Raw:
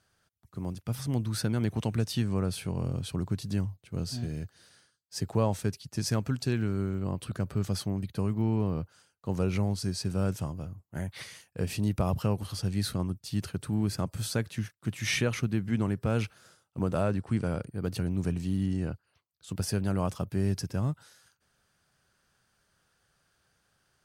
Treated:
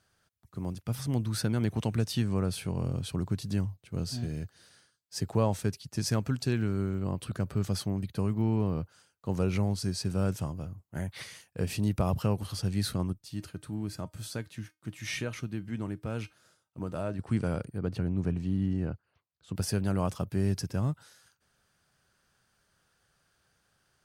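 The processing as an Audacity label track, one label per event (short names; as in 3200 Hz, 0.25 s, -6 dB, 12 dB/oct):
13.130000	17.190000	resonator 310 Hz, decay 0.19 s
17.780000	19.550000	LPF 1900 Hz 6 dB/oct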